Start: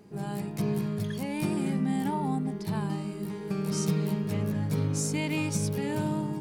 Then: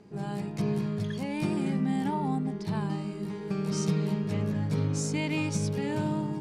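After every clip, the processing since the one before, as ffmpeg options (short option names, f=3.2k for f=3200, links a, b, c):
-af "lowpass=7.1k"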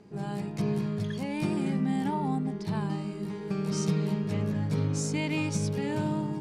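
-af anull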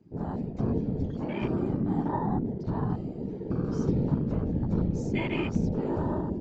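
-af "afftfilt=real='hypot(re,im)*cos(2*PI*random(0))':imag='hypot(re,im)*sin(2*PI*random(1))':win_size=512:overlap=0.75,afwtdn=0.00631,aresample=16000,aresample=44100,volume=7dB"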